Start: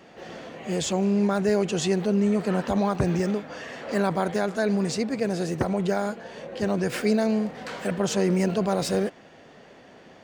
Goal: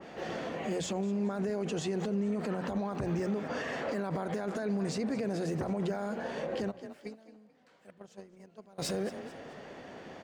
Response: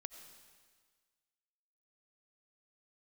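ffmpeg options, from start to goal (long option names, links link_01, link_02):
-filter_complex "[0:a]acompressor=threshold=-24dB:ratio=20,asplit=3[link_01][link_02][link_03];[link_01]afade=type=out:start_time=6.7:duration=0.02[link_04];[link_02]agate=range=-32dB:threshold=-23dB:ratio=16:detection=peak,afade=type=in:start_time=6.7:duration=0.02,afade=type=out:start_time=8.78:duration=0.02[link_05];[link_03]afade=type=in:start_time=8.78:duration=0.02[link_06];[link_04][link_05][link_06]amix=inputs=3:normalize=0,bandreject=frequency=60:width_type=h:width=6,bandreject=frequency=120:width_type=h:width=6,bandreject=frequency=180:width_type=h:width=6,bandreject=frequency=240:width_type=h:width=6,asplit=4[link_07][link_08][link_09][link_10];[link_08]adelay=217,afreqshift=34,volume=-18.5dB[link_11];[link_09]adelay=434,afreqshift=68,volume=-27.1dB[link_12];[link_10]adelay=651,afreqshift=102,volume=-35.8dB[link_13];[link_07][link_11][link_12][link_13]amix=inputs=4:normalize=0,alimiter=level_in=4dB:limit=-24dB:level=0:latency=1:release=50,volume=-4dB,adynamicequalizer=threshold=0.00158:dfrequency=2100:dqfactor=0.7:tfrequency=2100:tqfactor=0.7:attack=5:release=100:ratio=0.375:range=2.5:mode=cutabove:tftype=highshelf,volume=3dB"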